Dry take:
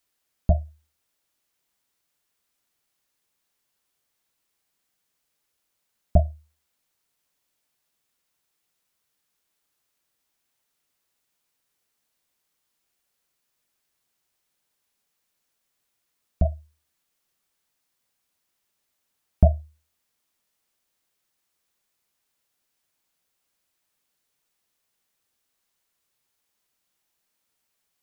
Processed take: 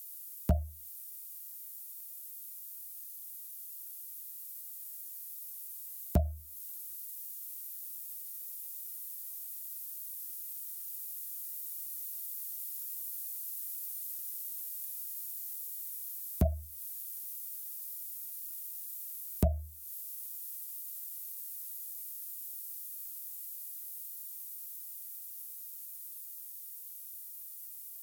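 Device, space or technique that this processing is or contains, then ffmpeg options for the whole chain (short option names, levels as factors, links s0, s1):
FM broadcast chain: -filter_complex "[0:a]highpass=f=43:w=0.5412,highpass=f=43:w=1.3066,dynaudnorm=f=960:g=11:m=3.76,acrossover=split=140|750[s0][s1][s2];[s0]acompressor=threshold=0.0891:ratio=4[s3];[s1]acompressor=threshold=0.0562:ratio=4[s4];[s2]acompressor=threshold=0.00224:ratio=4[s5];[s3][s4][s5]amix=inputs=3:normalize=0,aemphasis=mode=production:type=75fm,alimiter=limit=0.168:level=0:latency=1:release=220,asoftclip=type=hard:threshold=0.133,lowpass=f=15000:w=0.5412,lowpass=f=15000:w=1.3066,aemphasis=mode=production:type=75fm,volume=1.12"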